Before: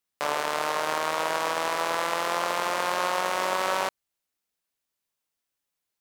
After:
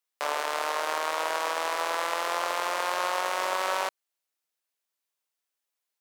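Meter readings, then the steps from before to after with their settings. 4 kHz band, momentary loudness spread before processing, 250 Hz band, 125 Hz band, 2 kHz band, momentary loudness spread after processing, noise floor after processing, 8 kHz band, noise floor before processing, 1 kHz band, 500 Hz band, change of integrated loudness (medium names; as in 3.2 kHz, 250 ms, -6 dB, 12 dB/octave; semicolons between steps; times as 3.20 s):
-1.5 dB, 2 LU, -7.0 dB, under -15 dB, -1.5 dB, 2 LU, under -85 dBFS, -1.5 dB, -84 dBFS, -1.5 dB, -2.5 dB, -2.0 dB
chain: high-pass 400 Hz 12 dB/octave; trim -1.5 dB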